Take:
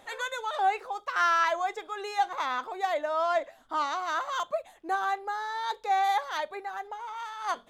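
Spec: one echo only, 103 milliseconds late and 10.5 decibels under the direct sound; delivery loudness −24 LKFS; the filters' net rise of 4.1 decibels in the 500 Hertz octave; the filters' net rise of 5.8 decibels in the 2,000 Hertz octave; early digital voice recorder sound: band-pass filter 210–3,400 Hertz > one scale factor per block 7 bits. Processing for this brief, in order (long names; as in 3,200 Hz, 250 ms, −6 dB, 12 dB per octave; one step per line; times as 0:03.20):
band-pass filter 210–3,400 Hz
parametric band 500 Hz +5.5 dB
parametric band 2,000 Hz +7.5 dB
single-tap delay 103 ms −10.5 dB
one scale factor per block 7 bits
level +2 dB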